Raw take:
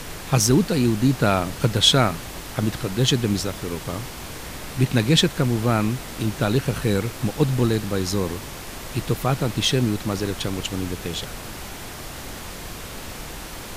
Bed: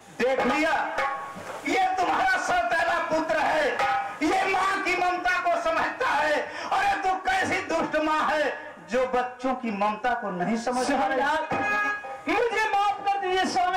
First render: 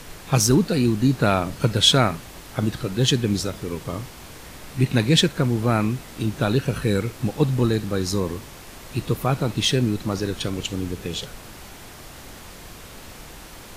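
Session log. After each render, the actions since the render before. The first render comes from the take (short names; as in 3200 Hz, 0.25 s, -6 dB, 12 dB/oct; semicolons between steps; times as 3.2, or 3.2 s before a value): noise print and reduce 6 dB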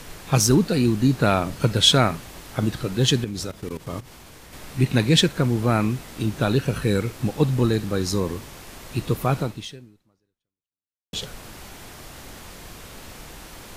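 3.24–4.53 level quantiser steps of 15 dB; 9.4–11.13 fade out exponential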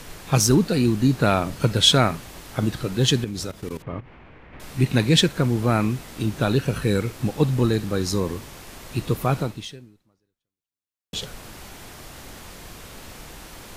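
3.82–4.6 Chebyshev low-pass 2400 Hz, order 3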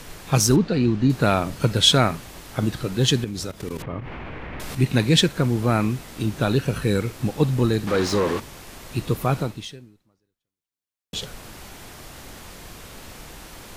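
0.56–1.1 air absorption 150 m; 3.6–4.75 fast leveller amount 70%; 7.87–8.4 overdrive pedal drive 22 dB, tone 1800 Hz, clips at -11 dBFS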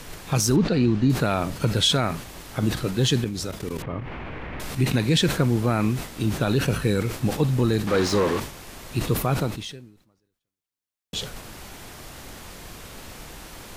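limiter -11 dBFS, peak gain reduction 7 dB; sustainer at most 110 dB/s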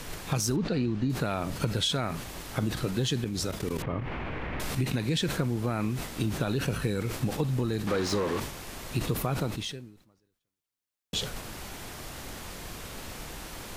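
compressor, threshold -25 dBFS, peak gain reduction 9.5 dB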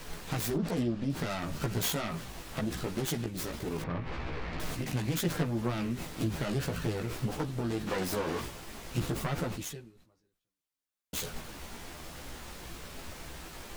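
self-modulated delay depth 0.5 ms; chorus voices 4, 0.67 Hz, delay 15 ms, depth 3.4 ms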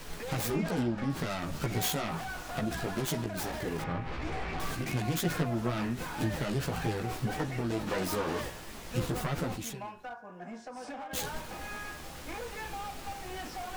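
add bed -17.5 dB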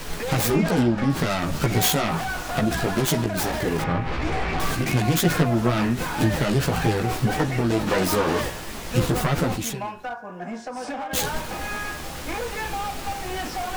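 gain +10.5 dB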